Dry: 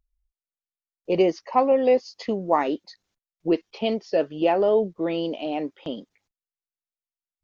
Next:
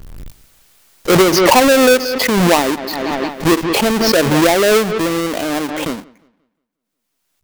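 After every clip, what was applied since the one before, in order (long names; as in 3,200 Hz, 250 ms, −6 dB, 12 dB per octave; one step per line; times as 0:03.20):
each half-wave held at its own peak
delay with a low-pass on its return 178 ms, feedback 32%, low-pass 3,400 Hz, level −23 dB
background raised ahead of every attack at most 22 dB per second
level +4 dB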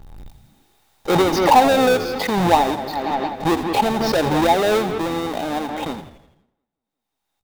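high-shelf EQ 3,300 Hz −7 dB
hollow resonant body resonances 820/3,700 Hz, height 14 dB, ringing for 35 ms
on a send: echo with shifted repeats 83 ms, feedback 54%, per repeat −76 Hz, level −12.5 dB
on the sum: level −6.5 dB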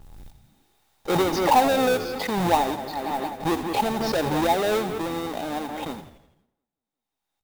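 noise that follows the level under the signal 21 dB
level −5.5 dB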